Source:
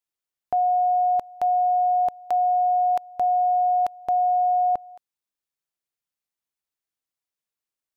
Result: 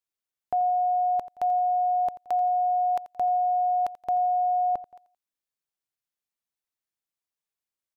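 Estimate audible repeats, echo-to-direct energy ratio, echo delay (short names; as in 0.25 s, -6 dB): 2, -15.5 dB, 86 ms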